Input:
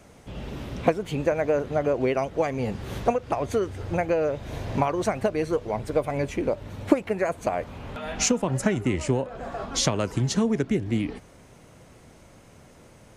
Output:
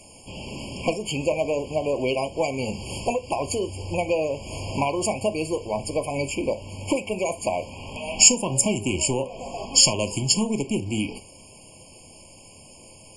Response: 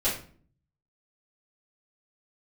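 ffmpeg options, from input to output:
-filter_complex "[0:a]asoftclip=type=tanh:threshold=-15dB,crystalizer=i=7.5:c=0,aresample=22050,aresample=44100,asplit=2[a][b];[1:a]atrim=start_sample=2205,atrim=end_sample=3528[c];[b][c]afir=irnorm=-1:irlink=0,volume=-18dB[d];[a][d]amix=inputs=2:normalize=0,afftfilt=real='re*eq(mod(floor(b*sr/1024/1100),2),0)':imag='im*eq(mod(floor(b*sr/1024/1100),2),0)':win_size=1024:overlap=0.75,volume=-2dB"

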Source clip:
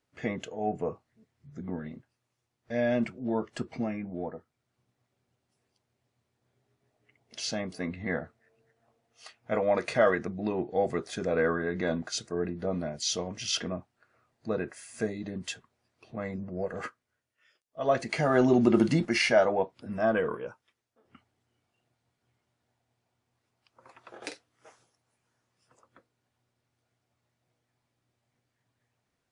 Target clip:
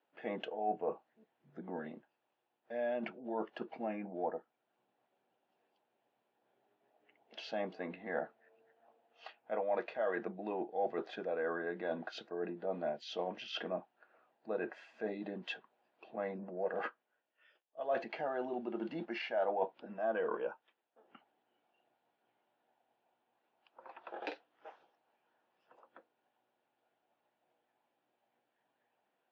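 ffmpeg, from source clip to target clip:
-af "areverse,acompressor=threshold=-33dB:ratio=20,areverse,highpass=f=250:w=0.5412,highpass=f=250:w=1.3066,equalizer=f=260:t=q:w=4:g=-8,equalizer=f=400:t=q:w=4:g=-4,equalizer=f=810:t=q:w=4:g=5,equalizer=f=1.2k:t=q:w=4:g=-6,equalizer=f=2.1k:t=q:w=4:g=-9,lowpass=f=3k:w=0.5412,lowpass=f=3k:w=1.3066,volume=3dB"

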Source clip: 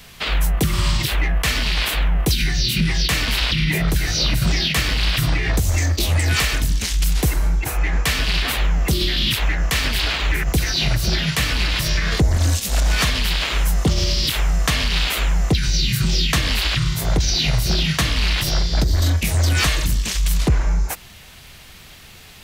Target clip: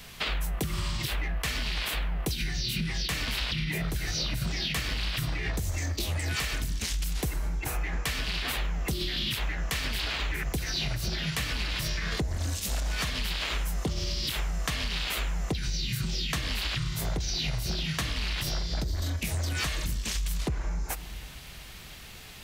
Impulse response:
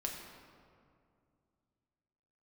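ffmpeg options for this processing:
-filter_complex "[0:a]asplit=2[a][b];[1:a]atrim=start_sample=2205[c];[b][c]afir=irnorm=-1:irlink=0,volume=-14dB[d];[a][d]amix=inputs=2:normalize=0,acompressor=threshold=-23dB:ratio=6,volume=-4.5dB"

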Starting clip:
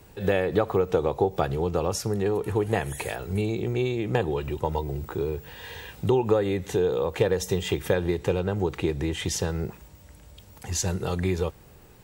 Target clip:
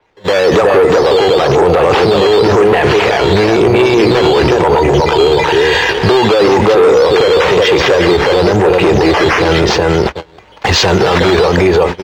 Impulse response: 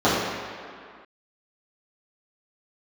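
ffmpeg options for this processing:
-filter_complex "[0:a]asplit=2[a][b];[b]adelay=367,lowpass=f=2k:p=1,volume=-5.5dB,asplit=2[c][d];[d]adelay=367,lowpass=f=2k:p=1,volume=0.25,asplit=2[e][f];[f]adelay=367,lowpass=f=2k:p=1,volume=0.25[g];[c][e][g]amix=inputs=3:normalize=0[h];[a][h]amix=inputs=2:normalize=0,acrusher=samples=8:mix=1:aa=0.000001:lfo=1:lforange=8:lforate=1,asoftclip=type=tanh:threshold=-23.5dB,dynaudnorm=f=180:g=5:m=14.5dB,agate=range=-31dB:threshold=-24dB:ratio=16:detection=peak,acrossover=split=360 5300:gain=0.178 1 0.0708[i][j][k];[i][j][k]amix=inputs=3:normalize=0,asplit=2[l][m];[m]acompressor=threshold=-47dB:ratio=6,volume=0dB[n];[l][n]amix=inputs=2:normalize=0,alimiter=level_in=25dB:limit=-1dB:release=50:level=0:latency=1,adynamicequalizer=threshold=0.0251:dfrequency=6800:dqfactor=0.7:tfrequency=6800:tqfactor=0.7:attack=5:release=100:ratio=0.375:range=2:mode=cutabove:tftype=highshelf,volume=-1dB"

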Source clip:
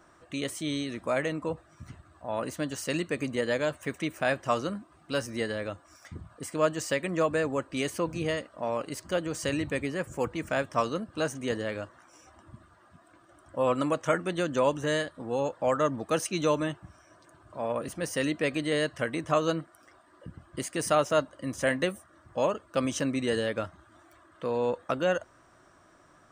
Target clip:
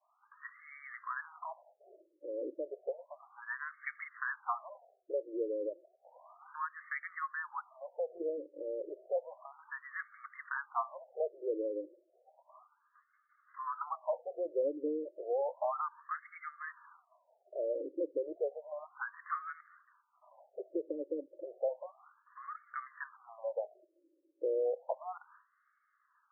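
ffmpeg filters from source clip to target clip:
-filter_complex "[0:a]agate=range=-33dB:threshold=-47dB:ratio=3:detection=peak,acrossover=split=140[a][b];[b]acompressor=threshold=-39dB:ratio=2.5[c];[a][c]amix=inputs=2:normalize=0,afftfilt=real='re*between(b*sr/1024,400*pow(1600/400,0.5+0.5*sin(2*PI*0.32*pts/sr))/1.41,400*pow(1600/400,0.5+0.5*sin(2*PI*0.32*pts/sr))*1.41)':imag='im*between(b*sr/1024,400*pow(1600/400,0.5+0.5*sin(2*PI*0.32*pts/sr))/1.41,400*pow(1600/400,0.5+0.5*sin(2*PI*0.32*pts/sr))*1.41)':win_size=1024:overlap=0.75,volume=6dB"

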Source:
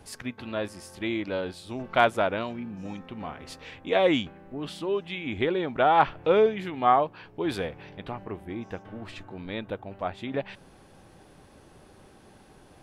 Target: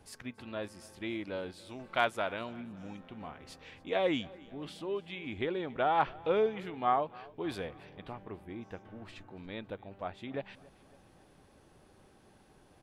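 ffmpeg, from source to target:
-filter_complex "[0:a]asettb=1/sr,asplit=3[a][b][c];[a]atrim=end=1.654[d];[b]atrim=start=1.65:end=2.41,asetpts=PTS-STARTPTS,afade=t=in:d=0.004:c=qsin,afade=t=out:st=0.756:d=0.004:c=qsin,tiltshelf=f=970:g=-3.5[e];[c]atrim=start=2.406[f];[d][e]acrossfade=d=0.004:c1=hsin:c2=qsin[g];[g][f]acrossfade=d=0.004:c1=qsin:c2=hsin,asplit=2[h][i];[i]aecho=0:1:279|558|837|1116:0.075|0.0435|0.0252|0.0146[j];[h][j]amix=inputs=2:normalize=0,volume=-8dB"

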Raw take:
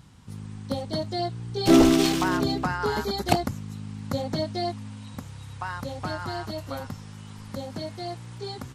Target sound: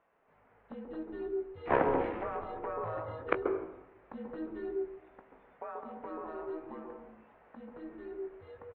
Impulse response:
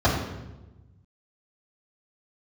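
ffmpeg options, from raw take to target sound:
-filter_complex "[0:a]aeval=exprs='0.531*(cos(1*acos(clip(val(0)/0.531,-1,1)))-cos(1*PI/2))+0.266*(cos(3*acos(clip(val(0)/0.531,-1,1)))-cos(3*PI/2))+0.015*(cos(5*acos(clip(val(0)/0.531,-1,1)))-cos(5*PI/2))':c=same,asplit=2[a][b];[b]adelay=19,volume=-10.5dB[c];[a][c]amix=inputs=2:normalize=0,asplit=2[d][e];[1:a]atrim=start_sample=2205,highshelf=f=2.1k:g=-11.5,adelay=131[f];[e][f]afir=irnorm=-1:irlink=0,volume=-20dB[g];[d][g]amix=inputs=2:normalize=0,highpass=f=560:t=q:w=0.5412,highpass=f=560:t=q:w=1.307,lowpass=f=2.4k:t=q:w=0.5176,lowpass=f=2.4k:t=q:w=0.7071,lowpass=f=2.4k:t=q:w=1.932,afreqshift=-310"

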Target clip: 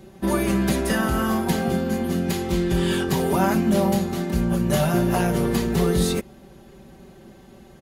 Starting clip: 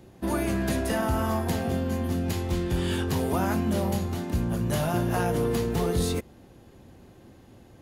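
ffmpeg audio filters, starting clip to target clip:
-af "aecho=1:1:5.2:0.79,volume=3.5dB"

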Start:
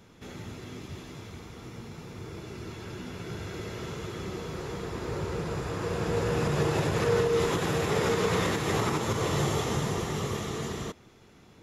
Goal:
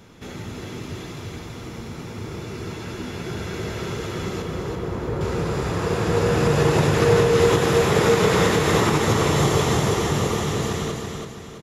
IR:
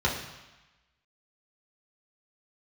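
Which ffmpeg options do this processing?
-filter_complex "[0:a]asettb=1/sr,asplit=3[a][b][c];[a]atrim=end=4.424[d];[b]atrim=start=4.42:end=5.21,asetpts=PTS-STARTPTS,afade=t=in:d=0.004:c=qsin,afade=t=out:st=0.786:d=0.004:c=qsin,equalizer=f=6.8k:w=0.31:g=-12.5[e];[c]atrim=start=5.206[f];[d][e]acrossfade=d=0.004:c1=hsin:c2=qsin[g];[g][f]acrossfade=d=0.004:c1=qsin:c2=hsin,asplit=2[h][i];[i]aecho=0:1:332|664|996|1328|1660:0.596|0.25|0.105|0.0441|0.0185[j];[h][j]amix=inputs=2:normalize=0,volume=7dB"

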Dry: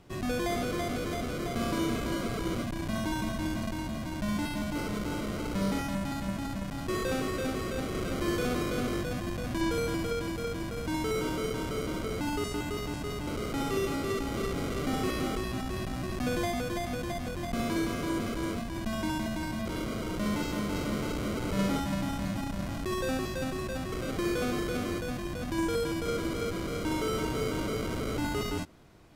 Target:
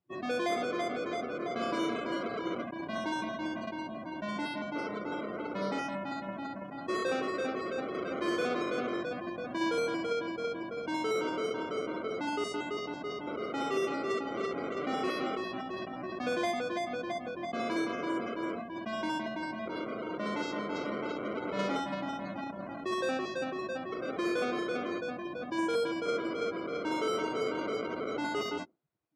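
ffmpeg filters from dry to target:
-filter_complex "[0:a]afftdn=nr=32:nf=-41,highpass=360,asplit=2[a][b];[b]adynamicsmooth=sensitivity=7:basefreq=5.8k,volume=-2.5dB[c];[a][c]amix=inputs=2:normalize=0,volume=-3dB"

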